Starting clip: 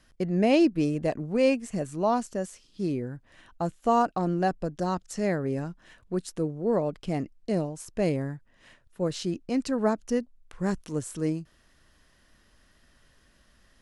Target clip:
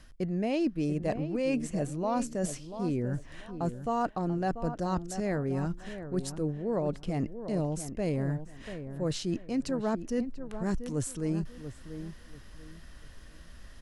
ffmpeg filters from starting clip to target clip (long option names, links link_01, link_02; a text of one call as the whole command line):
ffmpeg -i in.wav -filter_complex "[0:a]lowshelf=frequency=92:gain=9.5,areverse,acompressor=threshold=-36dB:ratio=4,areverse,asplit=2[link_01][link_02];[link_02]adelay=689,lowpass=frequency=1600:poles=1,volume=-10dB,asplit=2[link_03][link_04];[link_04]adelay=689,lowpass=frequency=1600:poles=1,volume=0.27,asplit=2[link_05][link_06];[link_06]adelay=689,lowpass=frequency=1600:poles=1,volume=0.27[link_07];[link_01][link_03][link_05][link_07]amix=inputs=4:normalize=0,volume=6.5dB" out.wav